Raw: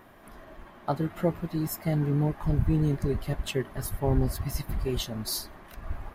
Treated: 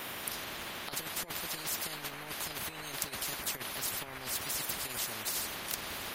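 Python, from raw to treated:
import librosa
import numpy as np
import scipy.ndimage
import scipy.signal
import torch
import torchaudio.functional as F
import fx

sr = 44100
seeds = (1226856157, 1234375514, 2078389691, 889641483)

y = scipy.signal.sosfilt(scipy.signal.butter(2, 190.0, 'highpass', fs=sr, output='sos'), x)
y = fx.over_compress(y, sr, threshold_db=-32.0, ratio=-0.5)
y = fx.spectral_comp(y, sr, ratio=10.0)
y = F.gain(torch.from_numpy(y), 5.0).numpy()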